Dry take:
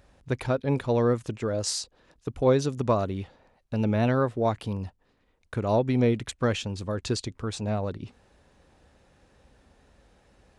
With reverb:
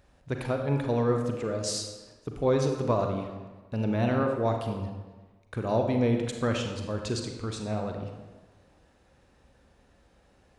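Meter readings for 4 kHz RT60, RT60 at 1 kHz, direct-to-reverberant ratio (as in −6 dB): 0.90 s, 1.3 s, 3.0 dB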